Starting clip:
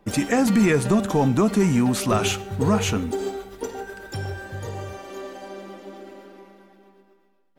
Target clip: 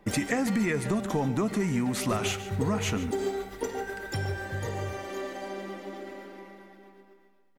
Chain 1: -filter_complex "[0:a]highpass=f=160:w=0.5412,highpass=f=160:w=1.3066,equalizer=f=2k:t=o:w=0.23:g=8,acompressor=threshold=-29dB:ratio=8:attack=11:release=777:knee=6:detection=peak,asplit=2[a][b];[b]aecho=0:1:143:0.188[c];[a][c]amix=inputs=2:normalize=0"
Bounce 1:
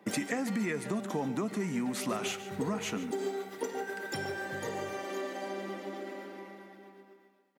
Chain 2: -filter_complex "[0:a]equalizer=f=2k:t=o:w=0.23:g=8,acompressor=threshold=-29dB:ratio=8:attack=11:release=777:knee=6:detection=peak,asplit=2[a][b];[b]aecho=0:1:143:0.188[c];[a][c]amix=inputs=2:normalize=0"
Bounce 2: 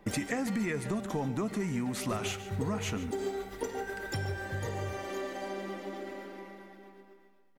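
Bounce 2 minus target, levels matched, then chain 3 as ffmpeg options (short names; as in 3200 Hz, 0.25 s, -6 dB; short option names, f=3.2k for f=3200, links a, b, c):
compressor: peak gain reduction +5 dB
-filter_complex "[0:a]equalizer=f=2k:t=o:w=0.23:g=8,acompressor=threshold=-23dB:ratio=8:attack=11:release=777:knee=6:detection=peak,asplit=2[a][b];[b]aecho=0:1:143:0.188[c];[a][c]amix=inputs=2:normalize=0"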